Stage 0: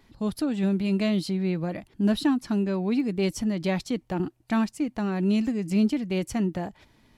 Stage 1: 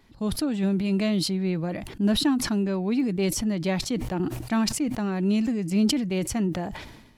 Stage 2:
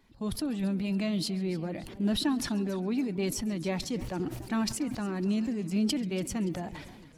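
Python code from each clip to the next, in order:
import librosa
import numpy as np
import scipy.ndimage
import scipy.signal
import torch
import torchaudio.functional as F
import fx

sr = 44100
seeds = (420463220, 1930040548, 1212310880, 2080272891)

y1 = fx.sustainer(x, sr, db_per_s=54.0)
y2 = fx.spec_quant(y1, sr, step_db=15)
y2 = fx.echo_feedback(y2, sr, ms=136, feedback_pct=48, wet_db=-23)
y2 = fx.echo_warbled(y2, sr, ms=282, feedback_pct=50, rate_hz=2.8, cents=181, wet_db=-18)
y2 = y2 * librosa.db_to_amplitude(-5.5)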